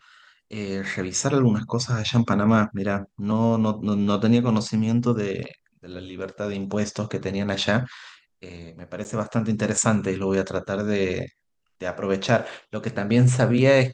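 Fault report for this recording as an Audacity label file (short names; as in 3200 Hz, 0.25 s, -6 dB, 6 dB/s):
9.040000	9.050000	gap 9.5 ms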